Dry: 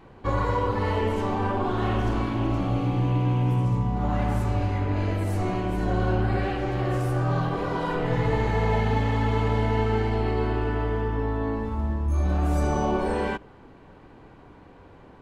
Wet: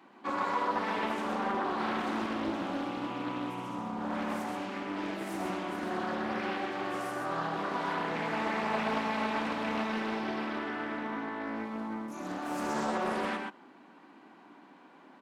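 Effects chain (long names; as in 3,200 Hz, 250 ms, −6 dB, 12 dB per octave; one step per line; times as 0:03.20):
Butterworth high-pass 210 Hz 36 dB per octave
parametric band 470 Hz −12 dB 0.6 octaves
single-tap delay 128 ms −4 dB
highs frequency-modulated by the lows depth 0.43 ms
level −3 dB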